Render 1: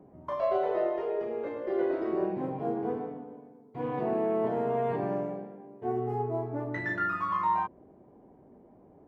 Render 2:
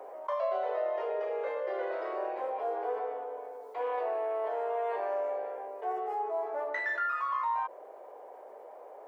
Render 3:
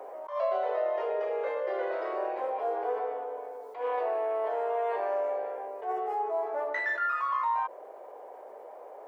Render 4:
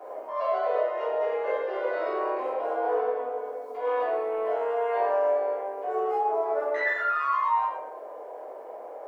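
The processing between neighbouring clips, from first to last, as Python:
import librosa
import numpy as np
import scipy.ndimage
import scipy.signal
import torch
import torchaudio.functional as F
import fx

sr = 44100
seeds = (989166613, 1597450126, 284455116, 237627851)

y1 = fx.rider(x, sr, range_db=5, speed_s=0.5)
y1 = scipy.signal.sosfilt(scipy.signal.ellip(4, 1.0, 80, 500.0, 'highpass', fs=sr, output='sos'), y1)
y1 = fx.env_flatten(y1, sr, amount_pct=50)
y1 = F.gain(torch.from_numpy(y1), -2.0).numpy()
y2 = fx.attack_slew(y1, sr, db_per_s=140.0)
y2 = F.gain(torch.from_numpy(y2), 2.5).numpy()
y3 = fx.room_shoebox(y2, sr, seeds[0], volume_m3=190.0, walls='mixed', distance_m=3.2)
y3 = F.gain(torch.from_numpy(y3), -6.0).numpy()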